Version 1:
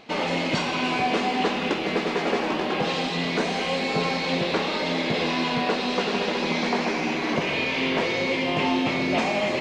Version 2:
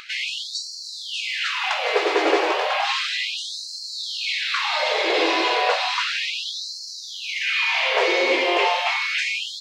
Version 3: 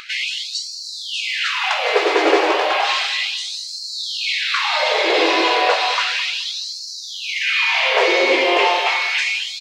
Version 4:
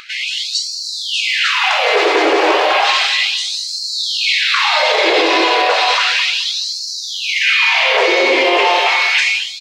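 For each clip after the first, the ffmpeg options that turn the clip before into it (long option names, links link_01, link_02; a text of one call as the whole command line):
ffmpeg -i in.wav -af "acompressor=mode=upward:threshold=-38dB:ratio=2.5,afftfilt=real='re*gte(b*sr/1024,290*pow(4100/290,0.5+0.5*sin(2*PI*0.33*pts/sr)))':imag='im*gte(b*sr/1024,290*pow(4100/290,0.5+0.5*sin(2*PI*0.33*pts/sr)))':win_size=1024:overlap=0.75,volume=6dB" out.wav
ffmpeg -i in.wav -filter_complex "[0:a]asplit=2[link_01][link_02];[link_02]adelay=212,lowpass=frequency=1300:poles=1,volume=-11.5dB,asplit=2[link_03][link_04];[link_04]adelay=212,lowpass=frequency=1300:poles=1,volume=0.21,asplit=2[link_05][link_06];[link_06]adelay=212,lowpass=frequency=1300:poles=1,volume=0.21[link_07];[link_01][link_03][link_05][link_07]amix=inputs=4:normalize=0,volume=4dB" out.wav
ffmpeg -i in.wav -af "alimiter=limit=-10.5dB:level=0:latency=1:release=36,dynaudnorm=framelen=130:gausssize=5:maxgain=7dB" out.wav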